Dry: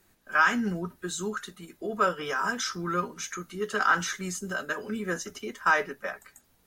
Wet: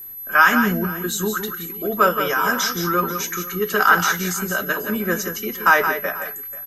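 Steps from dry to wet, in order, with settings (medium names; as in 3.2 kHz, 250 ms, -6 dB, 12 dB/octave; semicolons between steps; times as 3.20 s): whistle 12 kHz -42 dBFS; multi-tap echo 149/172/488 ms -19/-8/-19 dB; trim +8.5 dB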